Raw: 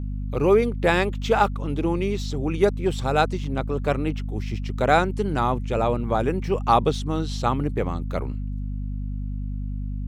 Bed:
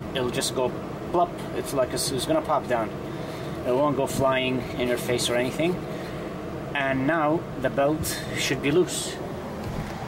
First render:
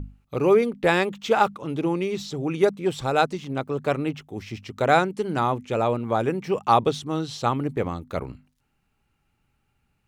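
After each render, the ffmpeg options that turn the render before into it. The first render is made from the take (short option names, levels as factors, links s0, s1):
-af "bandreject=f=50:t=h:w=6,bandreject=f=100:t=h:w=6,bandreject=f=150:t=h:w=6,bandreject=f=200:t=h:w=6,bandreject=f=250:t=h:w=6"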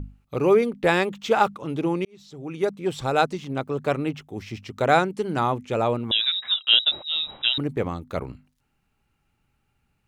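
-filter_complex "[0:a]asettb=1/sr,asplit=3[s0][s1][s2];[s0]atrim=end=6.114[s3];[s1]atrim=start=6.11:end=7.58,asetpts=PTS-STARTPTS,afade=t=in:d=0.004:c=qsin,afade=t=out:st=1.466:d=0.004:c=qsin,lowpass=f=3400:t=q:w=0.5098,lowpass=f=3400:t=q:w=0.6013,lowpass=f=3400:t=q:w=0.9,lowpass=f=3400:t=q:w=2.563,afreqshift=-4000[s4];[s2]atrim=start=7.576[s5];[s3][s4]acrossfade=d=0.004:c1=hsin:c2=qsin[s6];[s6][s5]acrossfade=d=0.004:c1=qsin:c2=hsin,asplit=2[s7][s8];[s7]atrim=end=2.05,asetpts=PTS-STARTPTS,afade=t=out:st=2.046:d=0.004:c=hsin[s9];[s8]atrim=start=2.05,asetpts=PTS-STARTPTS,afade=t=in:d=1[s10];[s9][s10]concat=n=2:v=0:a=1"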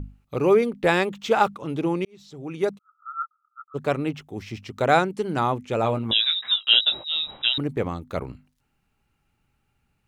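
-filter_complex "[0:a]asplit=3[s0][s1][s2];[s0]afade=t=out:st=2.77:d=0.02[s3];[s1]asuperpass=centerf=1300:order=8:qfactor=7.1,afade=t=in:st=2.77:d=0.02,afade=t=out:st=3.74:d=0.02[s4];[s2]afade=t=in:st=3.74:d=0.02[s5];[s3][s4][s5]amix=inputs=3:normalize=0,asettb=1/sr,asplit=3[s6][s7][s8];[s6]atrim=end=5.824[s9];[s7]atrim=start=5.82:end=7.06,asetpts=PTS-STARTPTS,afade=t=in:d=0.004:c=qsin,afade=t=out:st=1.236:d=0.004:c=qsin,asplit=2[s10][s11];[s11]adelay=18,volume=0.447[s12];[s10][s12]amix=inputs=2:normalize=0,atrim=end_sample=54684[s13];[s8]atrim=start=7.056[s14];[s9][s13]acrossfade=d=0.004:c1=hsin:c2=qsin[s15];[s15][s14]acrossfade=d=0.004:c1=qsin:c2=hsin"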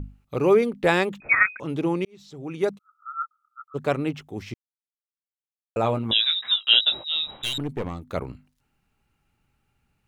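-filter_complex "[0:a]asettb=1/sr,asplit=3[s0][s1][s2];[s0]atrim=end=1.204[s3];[s1]atrim=start=1.2:end=1.6,asetpts=PTS-STARTPTS,afade=t=in:d=0.004:c=qsin,afade=t=out:st=0.396:d=0.004:c=qsin,lowpass=f=2300:t=q:w=0.5098,lowpass=f=2300:t=q:w=0.6013,lowpass=f=2300:t=q:w=0.9,lowpass=f=2300:t=q:w=2.563,afreqshift=-2700[s4];[s2]atrim=start=1.596[s5];[s3][s4]acrossfade=d=0.004:c1=hsin:c2=qsin[s6];[s6][s5]acrossfade=d=0.004:c1=qsin:c2=hsin,asettb=1/sr,asplit=3[s7][s8][s9];[s7]atrim=end=7.434[s10];[s8]atrim=start=7.43:end=8.08,asetpts=PTS-STARTPTS,afade=t=in:d=0.004:c=qsin,afade=t=out:st=0.646:d=0.004:c=qsin,aeval=exprs='(tanh(12.6*val(0)+0.45)-tanh(0.45))/12.6':c=same[s11];[s9]atrim=start=8.076[s12];[s10][s11]acrossfade=d=0.004:c1=hsin:c2=qsin[s13];[s13][s12]acrossfade=d=0.004:c1=qsin:c2=hsin,asplit=3[s14][s15][s16];[s14]atrim=end=4.54,asetpts=PTS-STARTPTS,afade=t=out:st=4.536:d=0.004:c=hsin[s17];[s15]atrim=start=4.54:end=5.76,asetpts=PTS-STARTPTS,volume=0[s18];[s16]atrim=start=5.76,asetpts=PTS-STARTPTS,afade=t=in:d=0.004:c=hsin[s19];[s17][s18][s19]concat=n=3:v=0:a=1"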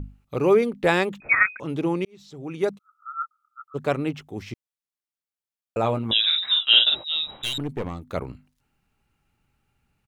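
-filter_complex "[0:a]asplit=3[s0][s1][s2];[s0]afade=t=out:st=6.23:d=0.02[s3];[s1]asplit=2[s4][s5];[s5]adelay=47,volume=0.708[s6];[s4][s6]amix=inputs=2:normalize=0,afade=t=in:st=6.23:d=0.02,afade=t=out:st=6.94:d=0.02[s7];[s2]afade=t=in:st=6.94:d=0.02[s8];[s3][s7][s8]amix=inputs=3:normalize=0"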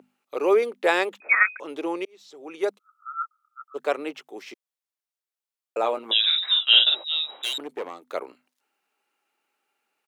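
-af "highpass=f=370:w=0.5412,highpass=f=370:w=1.3066"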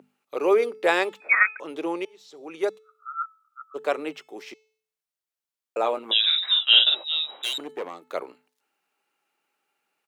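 -af "equalizer=f=160:t=o:w=0.22:g=7,bandreject=f=435.2:t=h:w=4,bandreject=f=870.4:t=h:w=4,bandreject=f=1305.6:t=h:w=4,bandreject=f=1740.8:t=h:w=4,bandreject=f=2176:t=h:w=4,bandreject=f=2611.2:t=h:w=4,bandreject=f=3046.4:t=h:w=4,bandreject=f=3481.6:t=h:w=4,bandreject=f=3916.8:t=h:w=4,bandreject=f=4352:t=h:w=4,bandreject=f=4787.2:t=h:w=4,bandreject=f=5222.4:t=h:w=4,bandreject=f=5657.6:t=h:w=4,bandreject=f=6092.8:t=h:w=4,bandreject=f=6528:t=h:w=4,bandreject=f=6963.2:t=h:w=4,bandreject=f=7398.4:t=h:w=4,bandreject=f=7833.6:t=h:w=4,bandreject=f=8268.8:t=h:w=4,bandreject=f=8704:t=h:w=4,bandreject=f=9139.2:t=h:w=4"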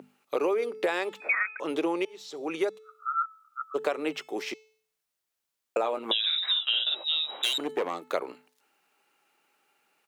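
-filter_complex "[0:a]asplit=2[s0][s1];[s1]alimiter=limit=0.178:level=0:latency=1,volume=1.12[s2];[s0][s2]amix=inputs=2:normalize=0,acompressor=threshold=0.0631:ratio=10"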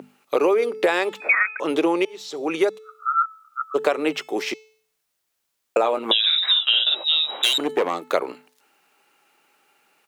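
-af "volume=2.51"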